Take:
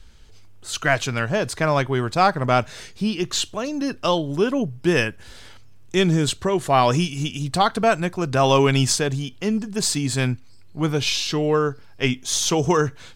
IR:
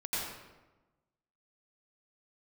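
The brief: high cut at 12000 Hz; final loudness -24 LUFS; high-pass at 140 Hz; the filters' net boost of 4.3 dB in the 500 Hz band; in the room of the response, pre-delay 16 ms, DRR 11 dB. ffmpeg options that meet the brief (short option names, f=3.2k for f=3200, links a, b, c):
-filter_complex "[0:a]highpass=140,lowpass=12k,equalizer=f=500:t=o:g=5.5,asplit=2[a][b];[1:a]atrim=start_sample=2205,adelay=16[c];[b][c]afir=irnorm=-1:irlink=0,volume=-16dB[d];[a][d]amix=inputs=2:normalize=0,volume=-4.5dB"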